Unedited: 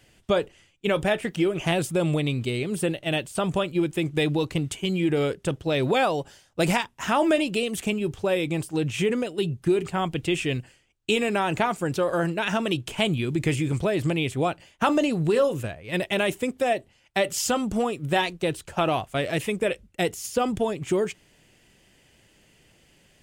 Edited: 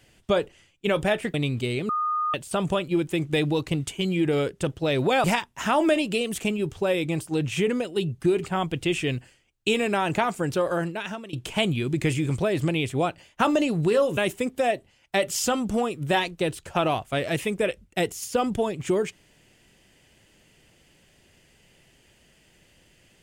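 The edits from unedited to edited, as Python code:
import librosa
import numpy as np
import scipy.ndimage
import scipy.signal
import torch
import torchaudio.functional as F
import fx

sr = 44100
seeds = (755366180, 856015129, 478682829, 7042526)

y = fx.edit(x, sr, fx.cut(start_s=1.34, length_s=0.84),
    fx.bleep(start_s=2.73, length_s=0.45, hz=1230.0, db=-22.5),
    fx.cut(start_s=6.08, length_s=0.58),
    fx.fade_out_to(start_s=12.06, length_s=0.69, floor_db=-20.5),
    fx.cut(start_s=15.59, length_s=0.6), tone=tone)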